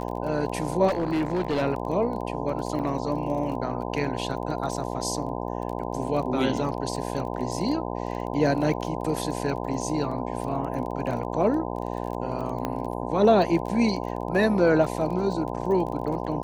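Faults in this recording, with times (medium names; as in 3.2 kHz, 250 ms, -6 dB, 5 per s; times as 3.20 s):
buzz 60 Hz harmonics 17 -31 dBFS
crackle 21 per s -33 dBFS
0.87–1.63 s: clipped -21 dBFS
2.79–2.80 s: dropout 6.6 ms
12.65 s: pop -14 dBFS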